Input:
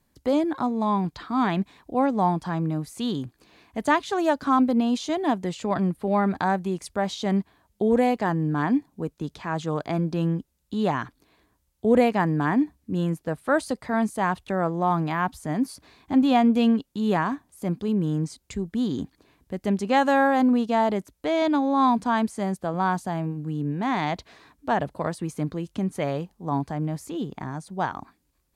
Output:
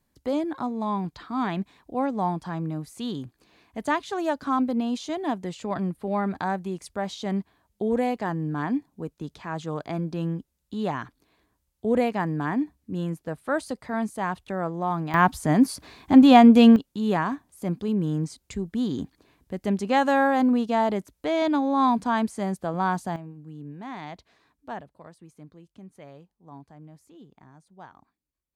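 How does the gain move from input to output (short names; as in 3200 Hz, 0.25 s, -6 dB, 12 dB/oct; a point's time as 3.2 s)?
-4 dB
from 15.14 s +6.5 dB
from 16.76 s -1 dB
from 23.16 s -12 dB
from 24.81 s -19 dB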